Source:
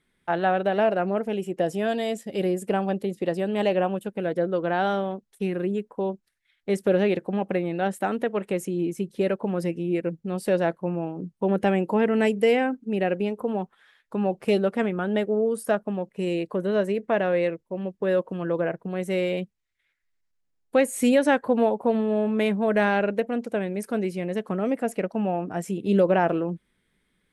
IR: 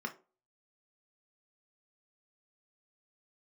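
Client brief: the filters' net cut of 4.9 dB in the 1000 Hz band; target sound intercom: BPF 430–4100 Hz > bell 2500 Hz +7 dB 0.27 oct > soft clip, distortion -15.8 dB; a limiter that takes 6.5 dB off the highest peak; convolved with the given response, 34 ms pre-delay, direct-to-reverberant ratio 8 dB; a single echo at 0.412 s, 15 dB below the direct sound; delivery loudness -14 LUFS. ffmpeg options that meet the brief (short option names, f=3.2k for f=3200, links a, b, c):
-filter_complex "[0:a]equalizer=f=1k:t=o:g=-7,alimiter=limit=-17dB:level=0:latency=1,aecho=1:1:412:0.178,asplit=2[a][b];[1:a]atrim=start_sample=2205,adelay=34[c];[b][c]afir=irnorm=-1:irlink=0,volume=-10dB[d];[a][d]amix=inputs=2:normalize=0,highpass=430,lowpass=4.1k,equalizer=f=2.5k:t=o:w=0.27:g=7,asoftclip=threshold=-22.5dB,volume=18.5dB"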